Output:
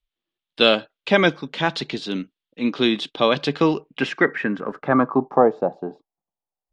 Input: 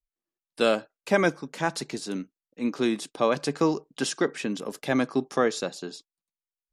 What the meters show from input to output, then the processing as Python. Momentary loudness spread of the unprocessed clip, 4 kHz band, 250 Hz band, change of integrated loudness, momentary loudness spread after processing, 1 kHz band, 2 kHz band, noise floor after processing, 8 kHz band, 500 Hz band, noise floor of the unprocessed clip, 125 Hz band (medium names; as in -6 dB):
10 LU, +11.0 dB, +5.5 dB, +6.5 dB, 11 LU, +7.5 dB, +7.5 dB, under -85 dBFS, under -10 dB, +5.5 dB, under -85 dBFS, +6.0 dB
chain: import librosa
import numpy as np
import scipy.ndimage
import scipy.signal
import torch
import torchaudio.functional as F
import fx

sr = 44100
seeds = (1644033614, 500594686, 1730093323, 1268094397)

y = fx.low_shelf(x, sr, hz=190.0, db=3.5)
y = fx.filter_sweep_lowpass(y, sr, from_hz=3400.0, to_hz=780.0, start_s=3.55, end_s=5.52, q=3.9)
y = F.gain(torch.from_numpy(y), 4.0).numpy()